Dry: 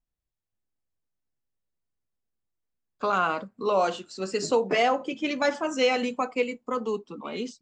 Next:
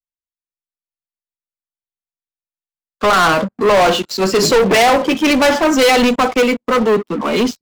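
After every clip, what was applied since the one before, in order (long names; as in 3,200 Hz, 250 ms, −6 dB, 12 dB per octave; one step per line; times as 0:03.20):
low-pass filter 5,900 Hz
leveller curve on the samples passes 5
multiband upward and downward expander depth 40%
level +4 dB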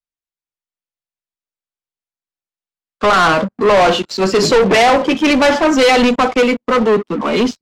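high-frequency loss of the air 50 metres
level +1 dB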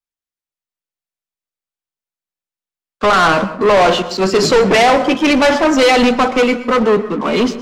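dense smooth reverb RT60 0.65 s, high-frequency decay 0.5×, pre-delay 105 ms, DRR 13 dB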